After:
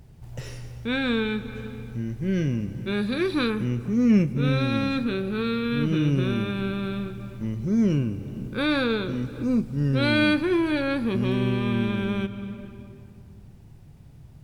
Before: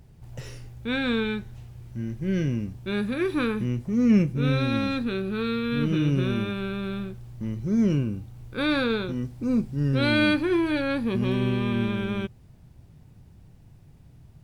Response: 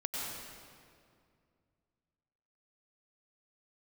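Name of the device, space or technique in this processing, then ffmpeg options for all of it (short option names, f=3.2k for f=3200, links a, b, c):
ducked reverb: -filter_complex "[0:a]asplit=3[a][b][c];[1:a]atrim=start_sample=2205[d];[b][d]afir=irnorm=-1:irlink=0[e];[c]apad=whole_len=636459[f];[e][f]sidechaincompress=threshold=-33dB:ratio=8:attack=35:release=367,volume=-8.5dB[g];[a][g]amix=inputs=2:normalize=0,asettb=1/sr,asplit=3[h][i][j];[h]atrim=end=3.014[k];[i]atrim=start=3.01:end=3.5,asetpts=PTS-STARTPTS,afade=t=in:d=0.004:c=qsin,afade=t=out:st=0.486:d=0.004:c=qsin,equalizer=f=4.3k:w=2.7:g=11[l];[j]atrim=start=3.496[m];[k][l]acrossfade=d=0.004:c1=hsin:c2=qsin[n];[n][m]acrossfade=d=0.004:c1=qsin:c2=hsin"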